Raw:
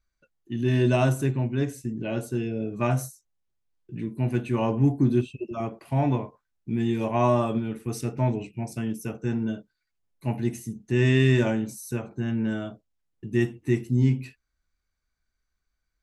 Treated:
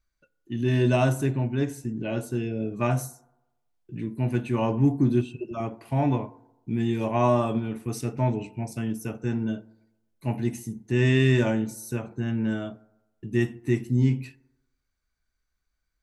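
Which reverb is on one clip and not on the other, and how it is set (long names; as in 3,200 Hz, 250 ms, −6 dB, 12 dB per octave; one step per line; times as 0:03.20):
feedback delay network reverb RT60 1 s, low-frequency decay 0.85×, high-frequency decay 0.35×, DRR 17.5 dB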